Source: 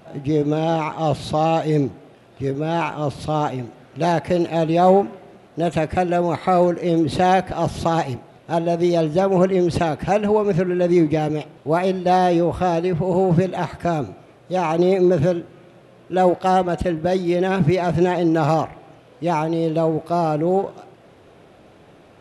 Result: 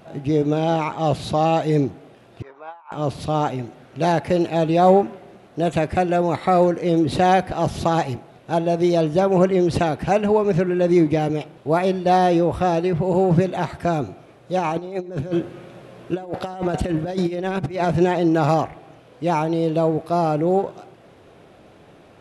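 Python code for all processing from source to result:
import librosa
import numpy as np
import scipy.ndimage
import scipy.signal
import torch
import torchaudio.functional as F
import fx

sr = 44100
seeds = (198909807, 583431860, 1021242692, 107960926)

y = fx.chain(x, sr, fx.ladder_bandpass(hz=1100.0, resonance_pct=65),
    fx.over_compress(threshold_db=-37.0, ratio=-0.5), at=(2.42, 2.92))
y = fx.chain(y, sr, fx.over_compress(threshold_db=-23.0, ratio=-0.5),
    fx.echo_feedback(ms=101, feedback_pct=49, wet_db=-23.5), at=(14.59, 17.85))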